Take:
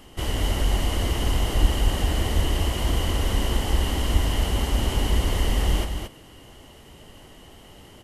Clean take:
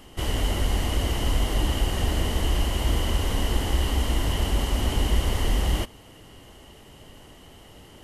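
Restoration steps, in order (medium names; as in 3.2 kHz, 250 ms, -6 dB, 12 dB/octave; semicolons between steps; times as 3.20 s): de-plosive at 1.61/2.35/4.12 s; inverse comb 224 ms -6 dB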